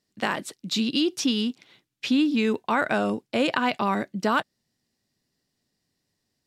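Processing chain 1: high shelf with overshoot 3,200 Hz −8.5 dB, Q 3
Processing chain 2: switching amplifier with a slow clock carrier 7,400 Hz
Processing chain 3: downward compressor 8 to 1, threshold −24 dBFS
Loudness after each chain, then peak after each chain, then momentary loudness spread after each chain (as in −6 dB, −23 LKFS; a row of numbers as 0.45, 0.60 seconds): −24.5, −25.5, −29.5 LKFS; −5.5, −9.5, −12.0 dBFS; 6, 7, 6 LU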